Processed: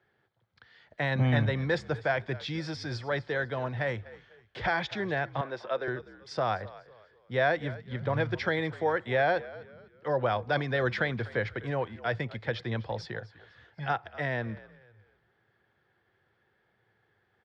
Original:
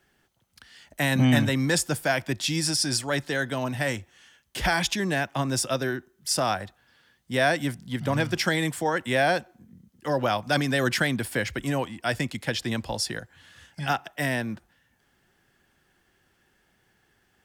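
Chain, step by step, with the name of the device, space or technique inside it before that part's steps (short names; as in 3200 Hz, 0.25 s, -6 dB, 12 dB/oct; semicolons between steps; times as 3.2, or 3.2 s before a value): frequency-shifting delay pedal into a guitar cabinet (frequency-shifting echo 0.249 s, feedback 34%, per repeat -60 Hz, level -18.5 dB; speaker cabinet 97–3600 Hz, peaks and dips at 110 Hz +7 dB, 180 Hz -5 dB, 270 Hz -9 dB, 470 Hz +5 dB, 2800 Hz -10 dB); 5.41–5.88 three-band isolator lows -21 dB, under 290 Hz, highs -17 dB, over 4200 Hz; gain -3.5 dB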